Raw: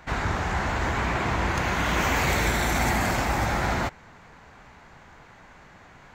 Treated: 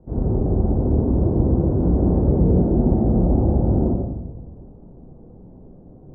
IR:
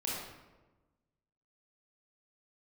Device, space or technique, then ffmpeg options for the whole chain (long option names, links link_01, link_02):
next room: -filter_complex "[0:a]lowpass=frequency=470:width=0.5412,lowpass=frequency=470:width=1.3066[link_01];[1:a]atrim=start_sample=2205[link_02];[link_01][link_02]afir=irnorm=-1:irlink=0,volume=6.5dB"